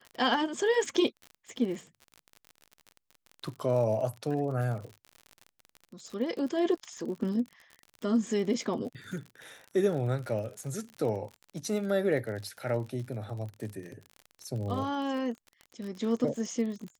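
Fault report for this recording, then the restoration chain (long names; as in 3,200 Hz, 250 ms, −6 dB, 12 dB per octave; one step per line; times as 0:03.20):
surface crackle 46 per second −37 dBFS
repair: click removal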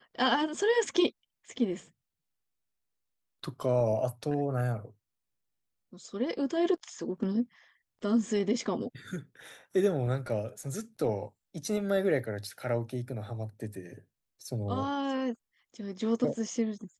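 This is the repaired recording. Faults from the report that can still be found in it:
none of them is left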